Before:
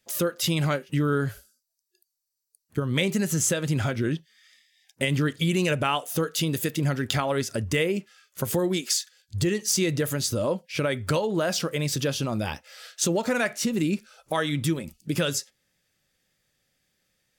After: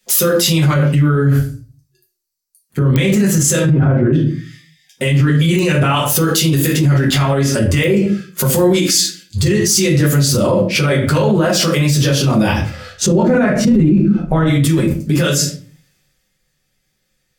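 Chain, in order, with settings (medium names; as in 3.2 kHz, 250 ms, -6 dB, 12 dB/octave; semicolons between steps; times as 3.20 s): 3.61–4.13 s: low-pass 1.1 kHz 12 dB/octave; 12.69–14.46 s: tilt EQ -4 dB/octave; simulated room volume 31 m³, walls mixed, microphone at 0.96 m; clicks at 2.96/5.59/7.84 s, -7 dBFS; loudness maximiser +19 dB; three bands expanded up and down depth 40%; trim -5 dB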